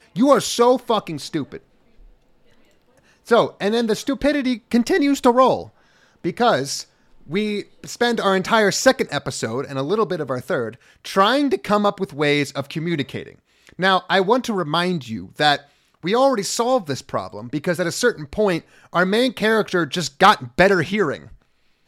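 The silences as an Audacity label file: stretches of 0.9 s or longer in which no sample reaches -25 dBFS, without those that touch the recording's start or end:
1.570000	3.310000	silence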